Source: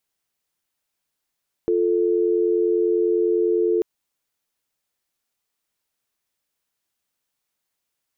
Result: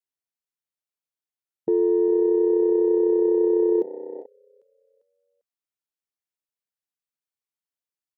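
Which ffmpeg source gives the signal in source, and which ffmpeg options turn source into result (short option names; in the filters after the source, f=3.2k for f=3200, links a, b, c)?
-f lavfi -i "aevalsrc='0.106*(sin(2*PI*350*t)+sin(2*PI*440*t))':d=2.14:s=44100"
-filter_complex "[0:a]highpass=f=65:w=0.5412,highpass=f=65:w=1.3066,asplit=5[a][b][c][d][e];[b]adelay=398,afreqshift=32,volume=-15.5dB[f];[c]adelay=796,afreqshift=64,volume=-22.4dB[g];[d]adelay=1194,afreqshift=96,volume=-29.4dB[h];[e]adelay=1592,afreqshift=128,volume=-36.3dB[i];[a][f][g][h][i]amix=inputs=5:normalize=0,afwtdn=0.0501"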